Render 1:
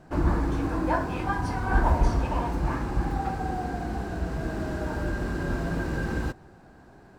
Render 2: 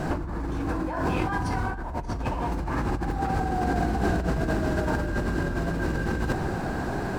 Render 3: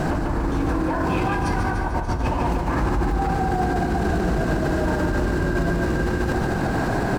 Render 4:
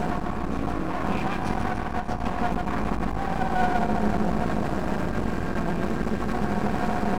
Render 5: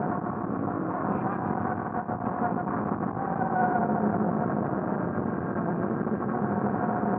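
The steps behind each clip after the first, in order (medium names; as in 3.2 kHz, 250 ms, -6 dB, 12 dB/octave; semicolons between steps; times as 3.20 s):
in parallel at 0 dB: peak limiter -20 dBFS, peak gain reduction 10 dB; on the sum: compressor with a negative ratio -33 dBFS, ratio -1; trim +6 dB
feedback delay 147 ms, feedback 55%, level -6 dB; peak limiter -20.5 dBFS, peak gain reduction 10.5 dB; trim +7 dB
small resonant body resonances 210/720/1100/2400 Hz, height 15 dB, ringing for 90 ms; half-wave rectifier; trim -4.5 dB
elliptic band-pass 110–1400 Hz, stop band 70 dB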